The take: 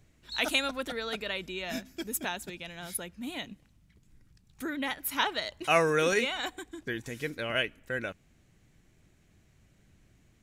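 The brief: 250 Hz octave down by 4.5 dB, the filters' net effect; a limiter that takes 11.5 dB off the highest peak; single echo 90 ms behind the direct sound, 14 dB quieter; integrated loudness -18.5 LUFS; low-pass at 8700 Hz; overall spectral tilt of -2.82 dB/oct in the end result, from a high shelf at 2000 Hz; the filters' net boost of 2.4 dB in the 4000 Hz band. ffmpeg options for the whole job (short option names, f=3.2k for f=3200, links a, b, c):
-af "lowpass=8.7k,equalizer=f=250:t=o:g=-6,highshelf=f=2k:g=-4,equalizer=f=4k:t=o:g=7,alimiter=limit=-22.5dB:level=0:latency=1,aecho=1:1:90:0.2,volume=16.5dB"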